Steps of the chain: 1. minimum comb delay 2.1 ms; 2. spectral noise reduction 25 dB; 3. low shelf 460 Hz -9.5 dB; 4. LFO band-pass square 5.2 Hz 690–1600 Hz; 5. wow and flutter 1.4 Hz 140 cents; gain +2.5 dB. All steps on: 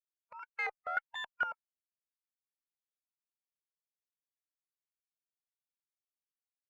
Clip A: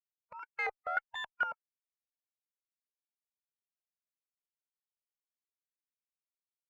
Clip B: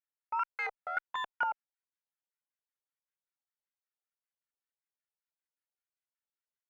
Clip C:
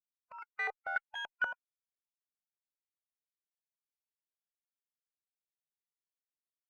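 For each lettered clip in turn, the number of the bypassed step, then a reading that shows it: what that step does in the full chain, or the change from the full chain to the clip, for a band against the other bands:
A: 3, 500 Hz band +2.5 dB; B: 2, 1 kHz band +6.0 dB; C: 5, 1 kHz band -3.5 dB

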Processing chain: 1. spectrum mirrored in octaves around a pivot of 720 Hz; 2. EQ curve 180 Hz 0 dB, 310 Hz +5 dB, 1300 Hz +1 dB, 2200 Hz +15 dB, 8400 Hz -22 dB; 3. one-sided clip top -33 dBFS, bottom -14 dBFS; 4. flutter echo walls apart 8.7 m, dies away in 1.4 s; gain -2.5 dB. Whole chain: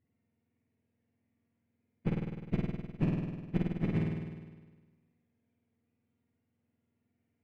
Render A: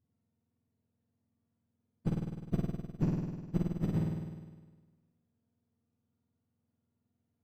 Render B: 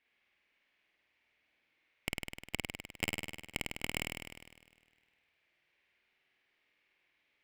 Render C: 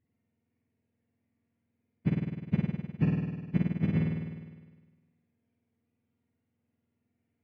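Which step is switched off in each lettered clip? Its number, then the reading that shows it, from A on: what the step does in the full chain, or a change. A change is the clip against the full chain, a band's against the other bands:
2, 2 kHz band -7.0 dB; 1, 2 kHz band +21.5 dB; 3, distortion -5 dB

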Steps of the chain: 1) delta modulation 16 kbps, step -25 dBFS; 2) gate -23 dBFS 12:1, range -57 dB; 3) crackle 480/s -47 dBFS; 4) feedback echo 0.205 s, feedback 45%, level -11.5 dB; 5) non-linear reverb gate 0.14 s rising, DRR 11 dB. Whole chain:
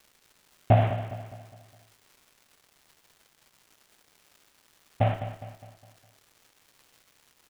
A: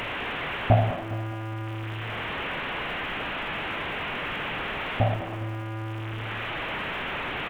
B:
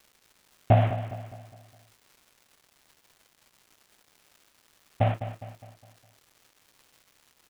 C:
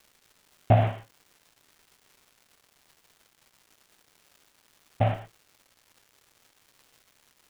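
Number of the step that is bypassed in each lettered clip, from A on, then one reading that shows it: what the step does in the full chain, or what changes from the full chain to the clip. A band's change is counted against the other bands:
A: 2, crest factor change -3.5 dB; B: 5, echo-to-direct -7.5 dB to -10.5 dB; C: 4, echo-to-direct -7.5 dB to -11.0 dB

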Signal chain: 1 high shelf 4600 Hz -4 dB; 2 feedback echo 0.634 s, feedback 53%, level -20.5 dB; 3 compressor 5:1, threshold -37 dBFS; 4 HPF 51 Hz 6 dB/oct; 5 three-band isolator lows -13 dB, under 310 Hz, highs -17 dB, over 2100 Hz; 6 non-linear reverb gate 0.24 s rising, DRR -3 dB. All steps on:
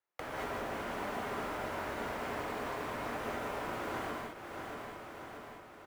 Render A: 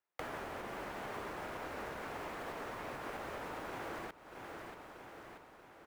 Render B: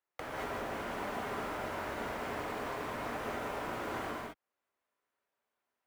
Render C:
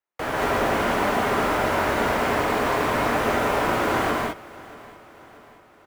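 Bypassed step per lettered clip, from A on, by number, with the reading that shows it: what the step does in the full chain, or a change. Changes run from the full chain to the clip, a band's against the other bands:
6, crest factor change +4.0 dB; 2, momentary loudness spread change -6 LU; 3, mean gain reduction 11.5 dB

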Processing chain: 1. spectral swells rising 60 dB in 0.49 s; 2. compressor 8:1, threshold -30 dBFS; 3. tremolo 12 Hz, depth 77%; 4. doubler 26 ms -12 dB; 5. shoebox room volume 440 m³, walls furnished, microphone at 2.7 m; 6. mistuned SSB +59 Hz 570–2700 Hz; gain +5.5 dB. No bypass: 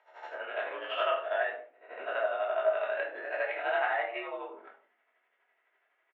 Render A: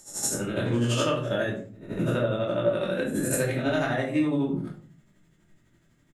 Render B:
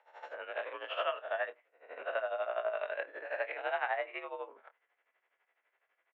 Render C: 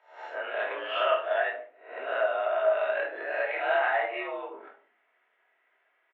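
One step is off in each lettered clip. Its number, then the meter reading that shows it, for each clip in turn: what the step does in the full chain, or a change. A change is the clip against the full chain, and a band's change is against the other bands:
6, 250 Hz band +25.5 dB; 5, momentary loudness spread change -4 LU; 3, loudness change +3.5 LU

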